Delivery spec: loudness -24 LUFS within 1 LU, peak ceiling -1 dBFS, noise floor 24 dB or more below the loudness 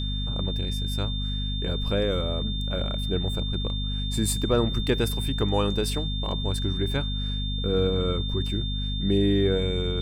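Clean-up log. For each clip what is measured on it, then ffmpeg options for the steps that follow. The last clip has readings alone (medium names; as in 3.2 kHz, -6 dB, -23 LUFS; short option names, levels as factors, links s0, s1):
hum 50 Hz; highest harmonic 250 Hz; hum level -26 dBFS; steady tone 3.6 kHz; tone level -33 dBFS; loudness -26.5 LUFS; peak level -9.0 dBFS; loudness target -24.0 LUFS
-> -af "bandreject=f=50:t=h:w=6,bandreject=f=100:t=h:w=6,bandreject=f=150:t=h:w=6,bandreject=f=200:t=h:w=6,bandreject=f=250:t=h:w=6"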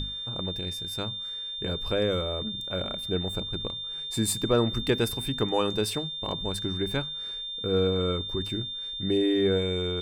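hum not found; steady tone 3.6 kHz; tone level -33 dBFS
-> -af "bandreject=f=3600:w=30"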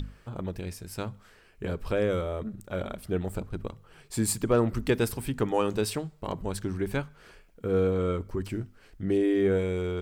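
steady tone not found; loudness -30.0 LUFS; peak level -11.5 dBFS; loudness target -24.0 LUFS
-> -af "volume=2"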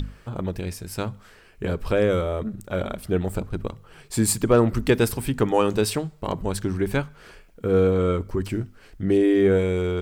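loudness -24.0 LUFS; peak level -5.5 dBFS; noise floor -51 dBFS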